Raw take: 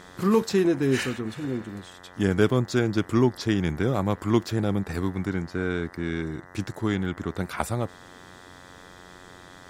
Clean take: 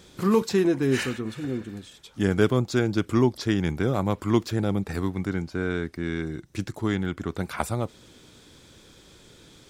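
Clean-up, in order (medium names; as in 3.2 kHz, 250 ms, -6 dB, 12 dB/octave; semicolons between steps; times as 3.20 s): de-hum 90.2 Hz, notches 22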